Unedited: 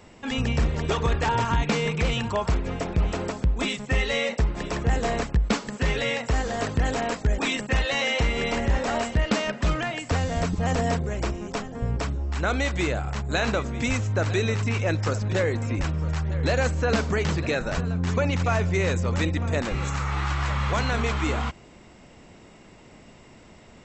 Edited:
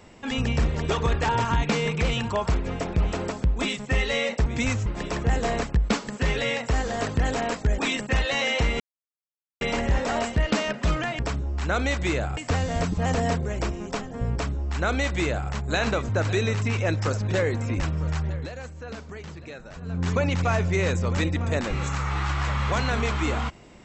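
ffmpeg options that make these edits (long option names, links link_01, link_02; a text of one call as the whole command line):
ffmpeg -i in.wav -filter_complex "[0:a]asplit=9[link_01][link_02][link_03][link_04][link_05][link_06][link_07][link_08][link_09];[link_01]atrim=end=4.462[link_10];[link_02]atrim=start=13.698:end=14.102[link_11];[link_03]atrim=start=4.458:end=8.4,asetpts=PTS-STARTPTS,afade=type=out:start_time=3.938:duration=0.004:curve=hsin,apad=pad_dur=0.81[link_12];[link_04]atrim=start=8.4:end=9.982,asetpts=PTS-STARTPTS,afade=type=in:duration=0.004:curve=hsin[link_13];[link_05]atrim=start=11.928:end=13.112[link_14];[link_06]atrim=start=9.978:end=13.702[link_15];[link_07]atrim=start=14.098:end=16.5,asetpts=PTS-STARTPTS,afade=type=out:start_time=2.172:duration=0.23:silence=0.188365[link_16];[link_08]atrim=start=16.5:end=17.8,asetpts=PTS-STARTPTS,volume=-14.5dB[link_17];[link_09]atrim=start=17.8,asetpts=PTS-STARTPTS,afade=type=in:duration=0.23:silence=0.188365[link_18];[link_10][link_11]acrossfade=duration=0.004:curve1=hsin:curve2=hsin[link_19];[link_12][link_13]concat=n=2:v=0:a=1[link_20];[link_19][link_20]acrossfade=duration=0.004:curve1=hsin:curve2=hsin[link_21];[link_21][link_14]acrossfade=duration=0.004:curve1=hsin:curve2=hsin[link_22];[link_22][link_15]acrossfade=duration=0.004:curve1=hsin:curve2=hsin[link_23];[link_16][link_17][link_18]concat=n=3:v=0:a=1[link_24];[link_23][link_24]acrossfade=duration=0.004:curve1=hsin:curve2=hsin" out.wav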